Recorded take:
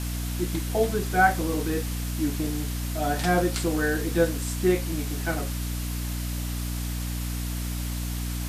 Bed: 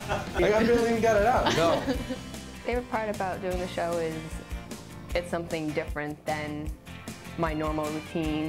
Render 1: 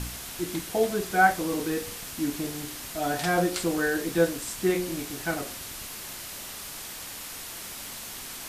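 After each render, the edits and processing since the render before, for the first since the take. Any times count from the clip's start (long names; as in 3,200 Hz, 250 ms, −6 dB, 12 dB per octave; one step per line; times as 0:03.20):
hum removal 60 Hz, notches 12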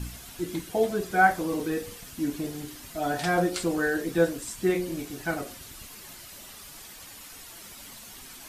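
broadband denoise 9 dB, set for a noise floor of −40 dBFS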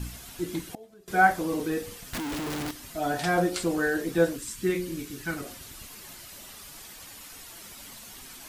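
0:00.61–0:01.08: gate with flip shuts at −24 dBFS, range −25 dB
0:02.13–0:02.71: comparator with hysteresis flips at −45 dBFS
0:04.36–0:05.44: parametric band 690 Hz −13 dB 0.78 octaves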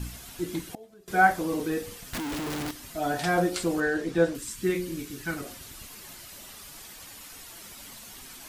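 0:03.80–0:04.35: high-frequency loss of the air 55 metres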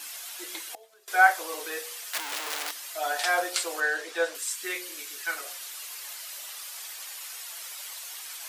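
high-pass filter 480 Hz 24 dB per octave
tilt shelving filter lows −6 dB, about 760 Hz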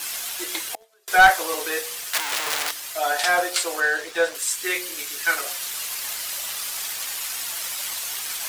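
leveller curve on the samples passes 2
speech leveller within 4 dB 2 s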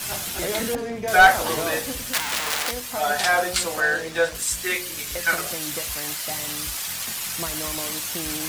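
mix in bed −5 dB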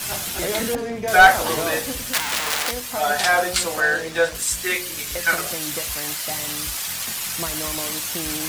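level +2 dB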